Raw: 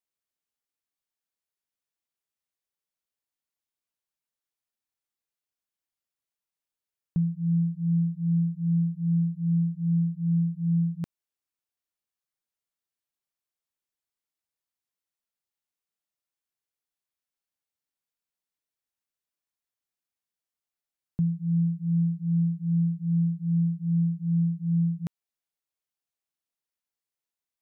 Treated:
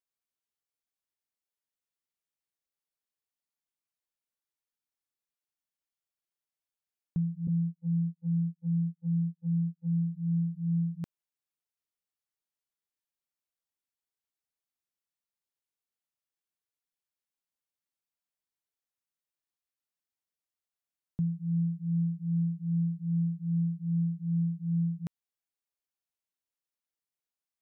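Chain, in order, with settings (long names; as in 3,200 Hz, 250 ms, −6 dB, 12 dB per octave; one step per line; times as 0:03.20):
0:07.47–0:09.97: noise gate −27 dBFS, range −40 dB
level −4.5 dB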